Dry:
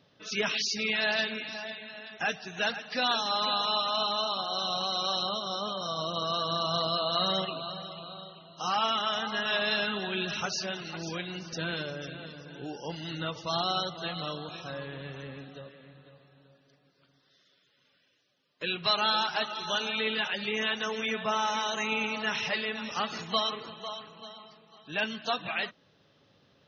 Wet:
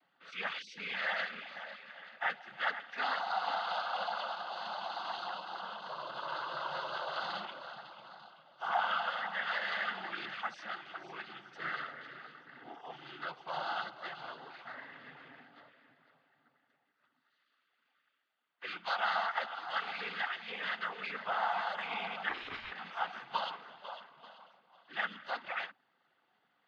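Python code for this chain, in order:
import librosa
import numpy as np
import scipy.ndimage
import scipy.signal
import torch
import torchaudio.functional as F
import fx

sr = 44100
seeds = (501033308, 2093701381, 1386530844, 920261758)

y = fx.cabinet(x, sr, low_hz=330.0, low_slope=12, high_hz=3200.0, hz=(400.0, 560.0, 810.0, 1500.0), db=(-8, -8, 9, 10))
y = fx.noise_vocoder(y, sr, seeds[0], bands=16)
y = fx.ring_mod(y, sr, carrier_hz=420.0, at=(22.28, 22.7), fade=0.02)
y = y * librosa.db_to_amplitude(-8.5)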